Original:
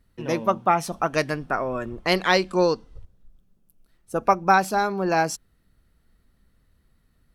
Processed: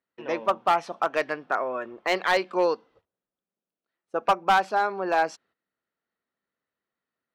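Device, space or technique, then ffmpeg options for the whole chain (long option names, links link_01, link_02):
walkie-talkie: -af "highpass=440,lowpass=3000,asoftclip=type=hard:threshold=-14dB,agate=range=-12dB:threshold=-57dB:ratio=16:detection=peak"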